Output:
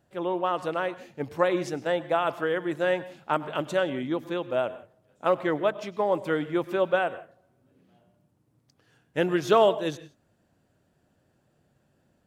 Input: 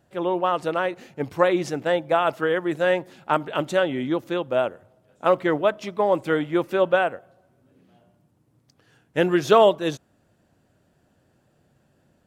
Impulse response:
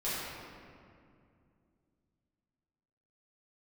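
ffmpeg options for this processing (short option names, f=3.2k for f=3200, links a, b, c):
-filter_complex "[0:a]asplit=2[a][b];[1:a]atrim=start_sample=2205,atrim=end_sample=3969,adelay=96[c];[b][c]afir=irnorm=-1:irlink=0,volume=-19.5dB[d];[a][d]amix=inputs=2:normalize=0,volume=-4.5dB"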